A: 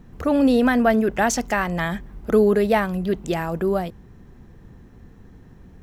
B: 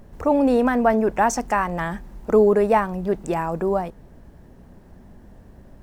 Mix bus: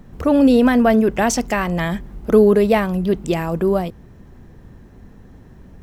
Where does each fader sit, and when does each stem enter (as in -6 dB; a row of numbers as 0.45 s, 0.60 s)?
+2.5 dB, -4.5 dB; 0.00 s, 0.00 s